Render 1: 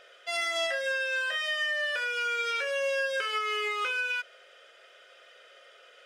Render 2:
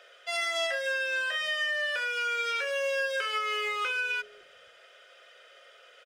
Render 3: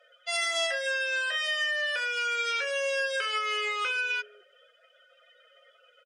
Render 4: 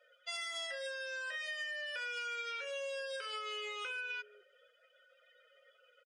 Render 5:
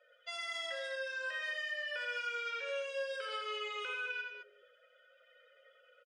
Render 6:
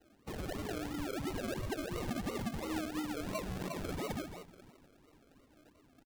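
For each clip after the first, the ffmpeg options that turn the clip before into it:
-filter_complex "[0:a]acrossover=split=420[s0][s1];[s0]acrusher=bits=3:mode=log:mix=0:aa=0.000001[s2];[s2][s1]amix=inputs=2:normalize=0,acrossover=split=290[s3][s4];[s3]adelay=560[s5];[s5][s4]amix=inputs=2:normalize=0"
-af "afftdn=nr=21:nf=-49,aemphasis=mode=production:type=cd"
-af "aecho=1:1:2.1:0.5,acompressor=threshold=0.0316:ratio=6,volume=0.398"
-af "lowpass=f=3100:p=1,aecho=1:1:84.55|209.9:0.631|0.398,volume=1.12"
-filter_complex "[0:a]afreqshift=-240,asplit=3[s0][s1][s2];[s1]adelay=489,afreqshift=56,volume=0.1[s3];[s2]adelay=978,afreqshift=112,volume=0.0309[s4];[s0][s3][s4]amix=inputs=3:normalize=0,acrusher=samples=37:mix=1:aa=0.000001:lfo=1:lforange=22.2:lforate=2.9,volume=1.12"

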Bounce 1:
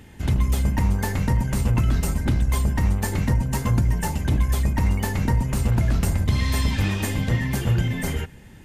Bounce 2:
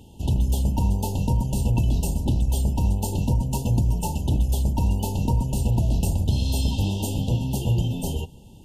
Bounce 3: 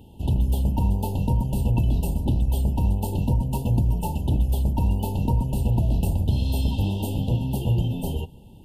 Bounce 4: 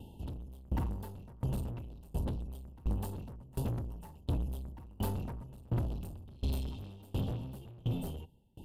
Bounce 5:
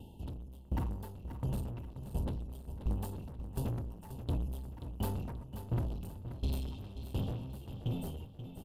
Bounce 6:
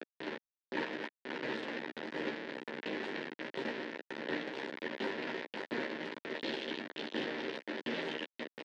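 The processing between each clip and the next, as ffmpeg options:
-af "afftfilt=real='re*(1-between(b*sr/4096,980,2600))':imag='im*(1-between(b*sr/4096,980,2600))':win_size=4096:overlap=0.75,volume=0.891"
-af "equalizer=f=6400:w=1.2:g=-13"
-af "asoftclip=type=tanh:threshold=0.0473,aeval=exprs='val(0)*pow(10,-27*if(lt(mod(1.4*n/s,1),2*abs(1.4)/1000),1-mod(1.4*n/s,1)/(2*abs(1.4)/1000),(mod(1.4*n/s,1)-2*abs(1.4)/1000)/(1-2*abs(1.4)/1000))/20)':c=same"
-af "aecho=1:1:532|1064|1596|2128:0.299|0.113|0.0431|0.0164,volume=0.891"
-filter_complex "[0:a]acrusher=bits=4:dc=4:mix=0:aa=0.000001,highpass=f=280:w=0.5412,highpass=f=280:w=1.3066,equalizer=f=740:t=q:w=4:g=-8,equalizer=f=1200:t=q:w=4:g=-10,equalizer=f=1800:t=q:w=4:g=8,lowpass=f=3900:w=0.5412,lowpass=f=3900:w=1.3066,asplit=2[s0][s1];[s1]adelay=13,volume=0.596[s2];[s0][s2]amix=inputs=2:normalize=0,volume=2.82"

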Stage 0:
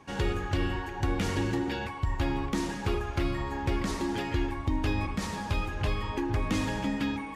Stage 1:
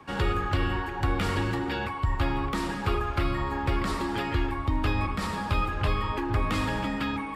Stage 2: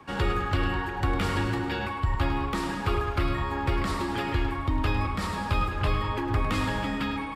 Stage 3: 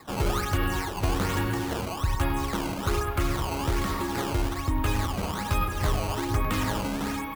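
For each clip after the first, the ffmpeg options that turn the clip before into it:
-filter_complex "[0:a]equalizer=f=1250:t=o:w=0.33:g=8,equalizer=f=6300:t=o:w=0.33:g=-10,equalizer=f=10000:t=o:w=0.33:g=-3,acrossover=split=150|460|2900[s0][s1][s2][s3];[s1]alimiter=level_in=2.66:limit=0.0631:level=0:latency=1,volume=0.376[s4];[s0][s4][s2][s3]amix=inputs=4:normalize=0,volume=1.41"
-af "aecho=1:1:104|208|312|416|520|624:0.282|0.149|0.0792|0.042|0.0222|0.0118"
-af "acrusher=samples=14:mix=1:aa=0.000001:lfo=1:lforange=22.4:lforate=1.2"

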